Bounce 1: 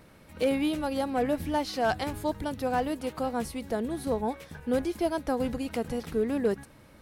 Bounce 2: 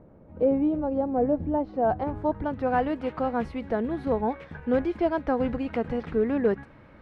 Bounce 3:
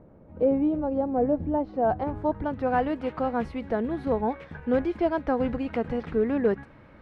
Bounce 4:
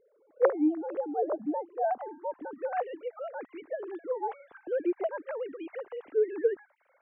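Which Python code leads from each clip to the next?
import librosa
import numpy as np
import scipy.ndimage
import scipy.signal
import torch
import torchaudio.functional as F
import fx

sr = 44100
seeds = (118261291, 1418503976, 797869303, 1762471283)

y1 = fx.filter_sweep_lowpass(x, sr, from_hz=640.0, to_hz=2000.0, start_s=1.74, end_s=2.81, q=0.99)
y1 = y1 * 10.0 ** (3.0 / 20.0)
y2 = y1
y3 = fx.sine_speech(y2, sr)
y3 = y3 * 10.0 ** (-5.5 / 20.0)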